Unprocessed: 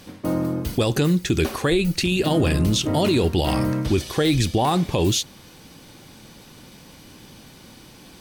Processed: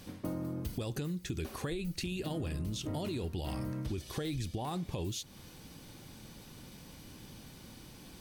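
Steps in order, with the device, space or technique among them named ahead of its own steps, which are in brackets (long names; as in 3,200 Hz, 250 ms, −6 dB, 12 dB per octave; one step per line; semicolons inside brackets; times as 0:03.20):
ASMR close-microphone chain (low-shelf EQ 180 Hz +7 dB; downward compressor 6 to 1, threshold −26 dBFS, peak gain reduction 13.5 dB; high-shelf EQ 8,500 Hz +5 dB)
level −8.5 dB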